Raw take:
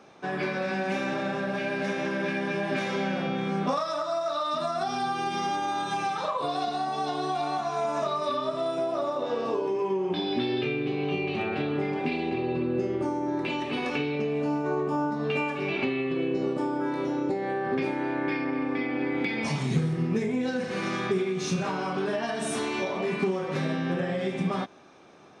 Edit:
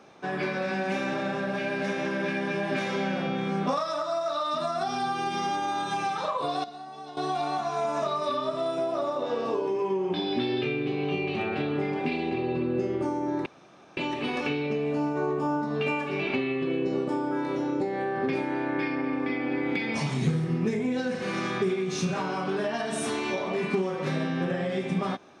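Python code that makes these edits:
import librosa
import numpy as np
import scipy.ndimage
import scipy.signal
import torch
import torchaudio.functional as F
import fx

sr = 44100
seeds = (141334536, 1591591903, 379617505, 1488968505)

y = fx.edit(x, sr, fx.clip_gain(start_s=6.64, length_s=0.53, db=-12.0),
    fx.insert_room_tone(at_s=13.46, length_s=0.51), tone=tone)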